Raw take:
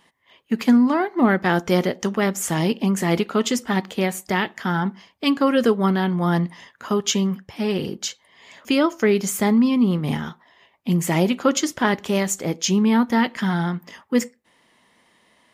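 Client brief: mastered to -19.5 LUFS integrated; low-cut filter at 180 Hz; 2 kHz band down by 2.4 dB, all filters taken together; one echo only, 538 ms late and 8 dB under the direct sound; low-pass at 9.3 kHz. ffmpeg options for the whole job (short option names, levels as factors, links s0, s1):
-af "highpass=180,lowpass=9300,equalizer=f=2000:t=o:g=-3,aecho=1:1:538:0.398,volume=1.33"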